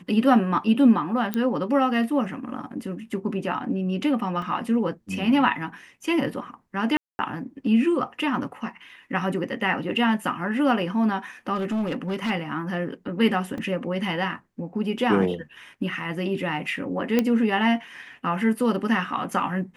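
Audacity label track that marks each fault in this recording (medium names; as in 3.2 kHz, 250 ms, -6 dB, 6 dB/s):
1.340000	1.340000	pop -12 dBFS
4.420000	4.420000	dropout 2.8 ms
6.970000	7.190000	dropout 220 ms
11.550000	12.310000	clipped -22.5 dBFS
13.580000	13.580000	dropout 2.5 ms
17.190000	17.190000	pop -8 dBFS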